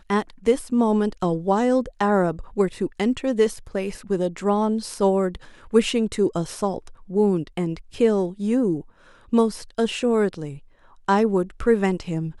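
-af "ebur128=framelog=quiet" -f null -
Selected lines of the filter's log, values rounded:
Integrated loudness:
  I:         -22.8 LUFS
  Threshold: -33.1 LUFS
Loudness range:
  LRA:         1.5 LU
  Threshold: -43.3 LUFS
  LRA low:   -23.8 LUFS
  LRA high:  -22.3 LUFS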